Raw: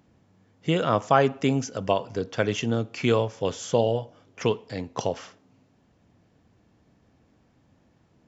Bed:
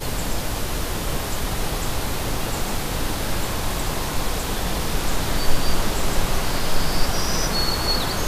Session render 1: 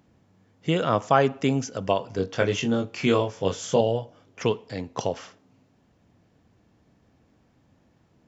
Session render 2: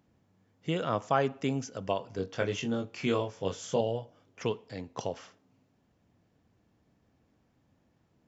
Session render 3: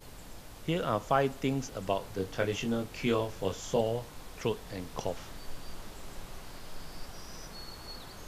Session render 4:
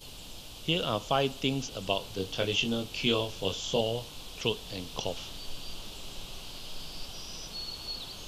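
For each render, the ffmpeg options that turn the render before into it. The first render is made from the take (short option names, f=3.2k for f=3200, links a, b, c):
-filter_complex "[0:a]asettb=1/sr,asplit=3[a][b][c];[a]atrim=end=2.164[d];[b]atrim=start=2.16:end=3.81,asetpts=PTS-STARTPTS,afade=t=in:d=0.004:c=qsin,afade=t=out:st=1.646:d=0.004:c=qsin,asplit=2[e][f];[f]adelay=21,volume=-4dB[g];[e][g]amix=inputs=2:normalize=0,atrim=end_sample=72765[h];[c]atrim=start=3.806[i];[d][h]acrossfade=d=0.004:c1=hsin:c2=qsin[j];[j][i]acrossfade=d=0.004:c1=qsin:c2=hsin"
-af "volume=-7.5dB"
-filter_complex "[1:a]volume=-23dB[a];[0:a][a]amix=inputs=2:normalize=0"
-filter_complex "[0:a]acrossover=split=5700[a][b];[b]acompressor=threshold=-60dB:ratio=4:attack=1:release=60[c];[a][c]amix=inputs=2:normalize=0,highshelf=f=2.4k:t=q:w=3:g=7.5"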